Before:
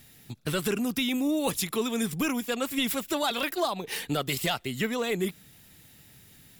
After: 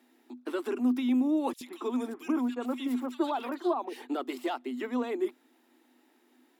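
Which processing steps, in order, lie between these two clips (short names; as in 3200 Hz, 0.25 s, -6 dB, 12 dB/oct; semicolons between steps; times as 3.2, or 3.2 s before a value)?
rippled Chebyshev high-pass 240 Hz, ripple 9 dB; tilt -3.5 dB/oct; 1.53–4.02 bands offset in time highs, lows 80 ms, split 1900 Hz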